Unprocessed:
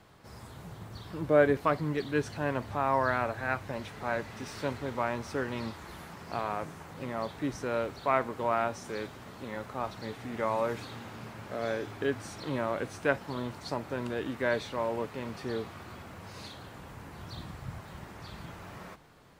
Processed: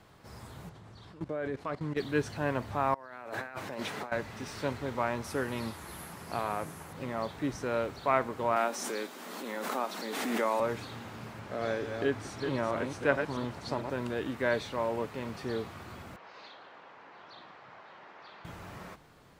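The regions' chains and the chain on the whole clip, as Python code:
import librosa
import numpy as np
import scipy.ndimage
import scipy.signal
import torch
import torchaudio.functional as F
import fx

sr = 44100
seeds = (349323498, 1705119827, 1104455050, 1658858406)

y = fx.chain(x, sr, fx.lowpass(hz=8000.0, slope=12),
    fx.low_shelf(hz=87.0, db=-2.0),
    fx.level_steps(step_db=17), at=(0.69, 1.97))
y = fx.chain(y, sr, fx.highpass(hz=210.0, slope=12),
    fx.over_compress(threshold_db=-42.0, ratio=-1.0), at=(2.94, 4.12))
y = fx.chain(y, sr, fx.highpass(hz=43.0, slope=12),
    fx.peak_eq(hz=11000.0, db=14.5, octaves=0.56), at=(5.24, 6.93))
y = fx.chain(y, sr, fx.steep_highpass(hz=210.0, slope=36),
    fx.high_shelf(hz=5700.0, db=9.0),
    fx.pre_swell(db_per_s=26.0), at=(8.56, 10.6))
y = fx.chain(y, sr, fx.reverse_delay(ms=220, wet_db=-6),
    fx.high_shelf(hz=11000.0, db=-8.5), at=(11.39, 13.9))
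y = fx.chain(y, sr, fx.bandpass_edges(low_hz=540.0, high_hz=7200.0),
    fx.air_absorb(metres=200.0), at=(16.16, 18.45))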